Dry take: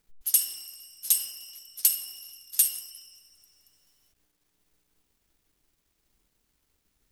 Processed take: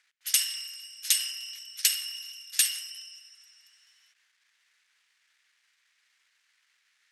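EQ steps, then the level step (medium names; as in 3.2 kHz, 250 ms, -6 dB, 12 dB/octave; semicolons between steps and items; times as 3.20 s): resonant high-pass 1.8 kHz, resonance Q 2.6; low-pass 6.2 kHz 12 dB/octave; +7.0 dB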